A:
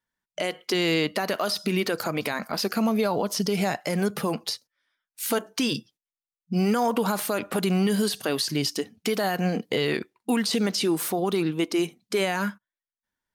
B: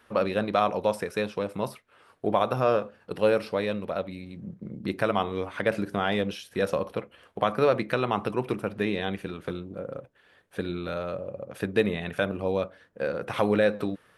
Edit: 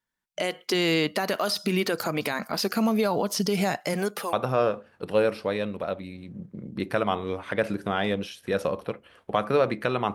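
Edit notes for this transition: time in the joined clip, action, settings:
A
3.93–4.33 HPF 180 Hz -> 700 Hz
4.33 switch to B from 2.41 s

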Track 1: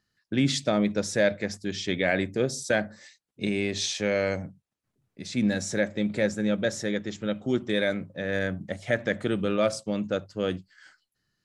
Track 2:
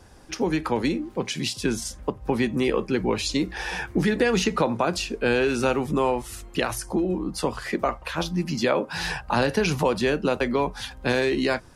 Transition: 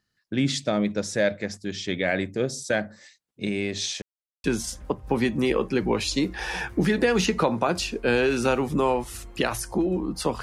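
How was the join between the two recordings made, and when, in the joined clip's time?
track 1
4.02–4.44 mute
4.44 switch to track 2 from 1.62 s

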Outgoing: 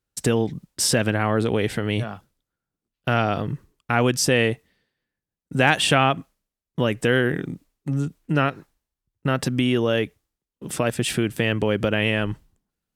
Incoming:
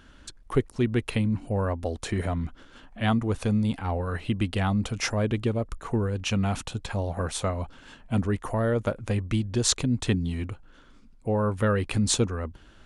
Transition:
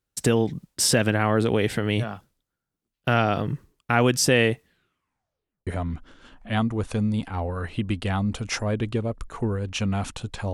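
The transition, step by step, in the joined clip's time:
outgoing
4.63 tape stop 1.04 s
5.67 switch to incoming from 2.18 s

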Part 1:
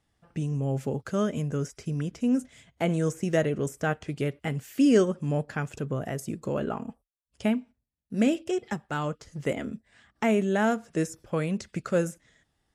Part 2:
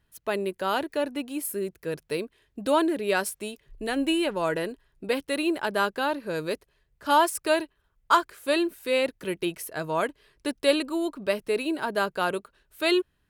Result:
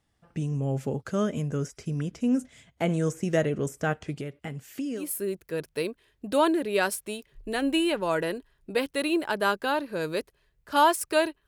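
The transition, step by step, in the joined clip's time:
part 1
4.19–5.1 compressor 2.5:1, threshold -36 dBFS
5.01 switch to part 2 from 1.35 s, crossfade 0.18 s

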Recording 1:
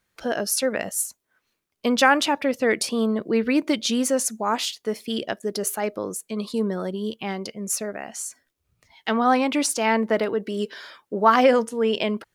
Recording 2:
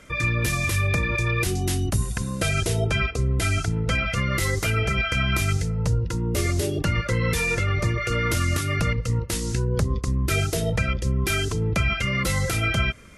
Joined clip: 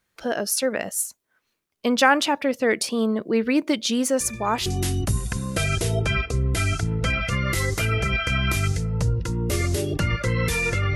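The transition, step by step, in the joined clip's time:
recording 1
4.2 add recording 2 from 1.05 s 0.46 s -14 dB
4.66 switch to recording 2 from 1.51 s

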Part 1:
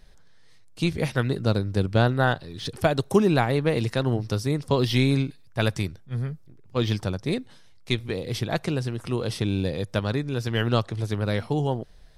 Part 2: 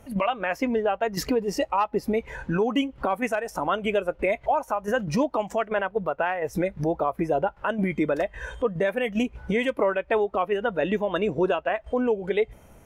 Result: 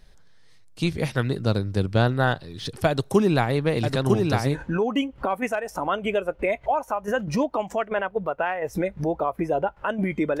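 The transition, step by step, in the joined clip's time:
part 1
2.88–4.63 echo 0.952 s -3 dB
4.54 switch to part 2 from 2.34 s, crossfade 0.18 s

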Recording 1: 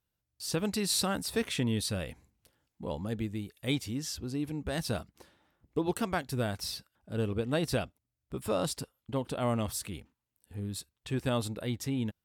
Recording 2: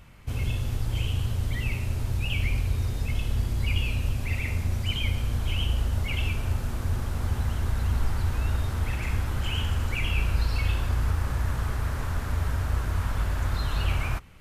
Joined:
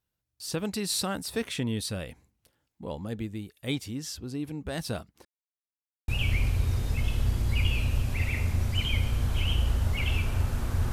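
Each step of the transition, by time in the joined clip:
recording 1
5.25–6.08 mute
6.08 switch to recording 2 from 2.19 s

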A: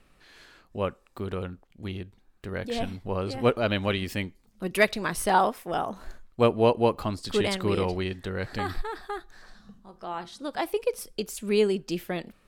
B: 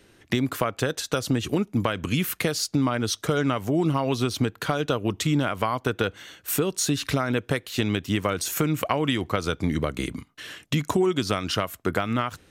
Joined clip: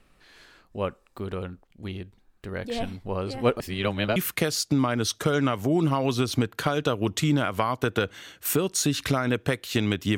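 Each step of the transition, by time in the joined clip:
A
3.6–4.16 reverse
4.16 switch to B from 2.19 s

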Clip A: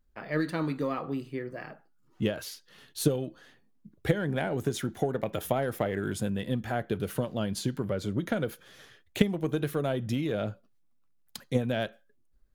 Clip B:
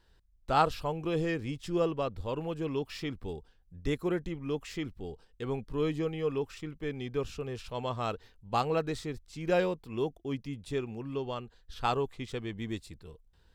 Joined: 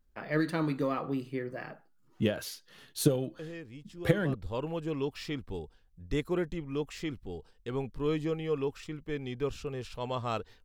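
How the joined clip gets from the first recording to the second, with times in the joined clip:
clip A
3.39 add clip B from 1.13 s 0.95 s -11.5 dB
4.34 switch to clip B from 2.08 s

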